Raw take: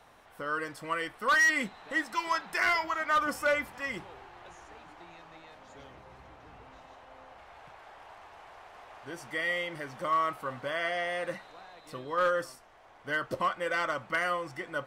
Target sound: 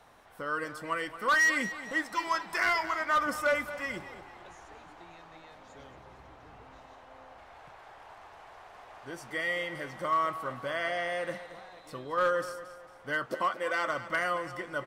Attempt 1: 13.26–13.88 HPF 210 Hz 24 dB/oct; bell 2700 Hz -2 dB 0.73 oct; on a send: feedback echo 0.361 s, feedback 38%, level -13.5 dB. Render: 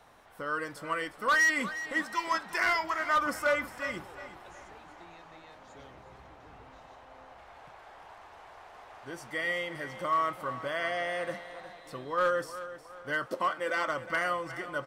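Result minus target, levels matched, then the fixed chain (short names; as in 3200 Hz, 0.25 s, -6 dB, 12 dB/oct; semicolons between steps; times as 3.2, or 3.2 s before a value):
echo 0.136 s late
13.26–13.88 HPF 210 Hz 24 dB/oct; bell 2700 Hz -2 dB 0.73 oct; on a send: feedback echo 0.225 s, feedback 38%, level -13.5 dB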